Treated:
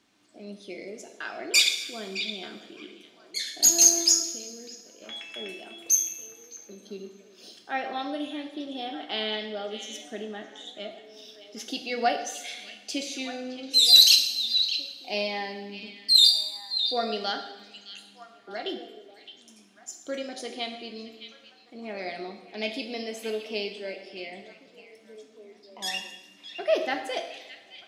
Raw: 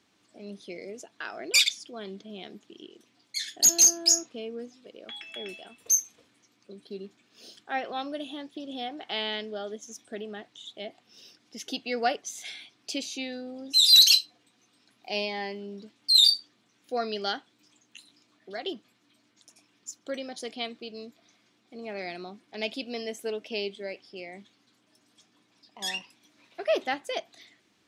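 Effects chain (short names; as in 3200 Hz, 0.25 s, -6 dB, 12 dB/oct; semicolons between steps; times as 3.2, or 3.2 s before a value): delay with a stepping band-pass 0.614 s, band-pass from 3100 Hz, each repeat -1.4 oct, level -9 dB; 4.2–5.02 level quantiser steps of 11 dB; two-slope reverb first 0.84 s, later 2.7 s, from -18 dB, DRR 4 dB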